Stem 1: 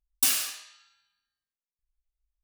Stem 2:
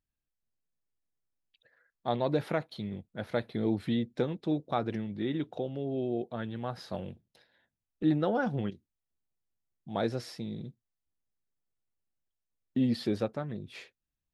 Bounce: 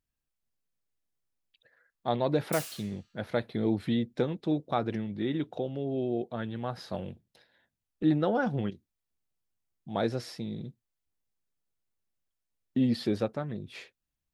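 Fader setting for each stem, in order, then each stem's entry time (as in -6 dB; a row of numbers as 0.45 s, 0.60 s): -15.0 dB, +1.5 dB; 2.30 s, 0.00 s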